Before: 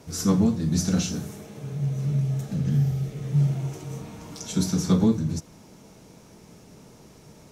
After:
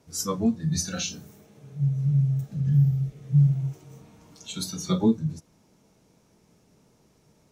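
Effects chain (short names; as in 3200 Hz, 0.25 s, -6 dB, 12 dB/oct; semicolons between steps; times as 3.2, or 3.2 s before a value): spectral noise reduction 15 dB; gain +3 dB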